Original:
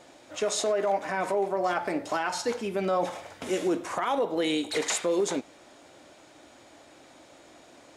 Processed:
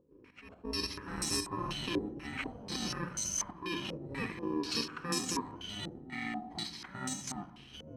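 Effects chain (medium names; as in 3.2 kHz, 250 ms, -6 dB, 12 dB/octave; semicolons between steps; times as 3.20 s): bit-reversed sample order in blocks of 64 samples; bass shelf 99 Hz +9 dB; slow attack 311 ms; in parallel at -2 dB: peak limiter -25 dBFS, peak gain reduction 8.5 dB; on the sum: trance gate ".xxxx.xx" 139 bpm -12 dB; ever faster or slower copies 213 ms, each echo -5 st, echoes 2, each echo -6 dB; on a send at -10 dB: reverberation RT60 1.3 s, pre-delay 4 ms; on the sum: step-sequenced low-pass 4.1 Hz 490–6600 Hz; trim -7.5 dB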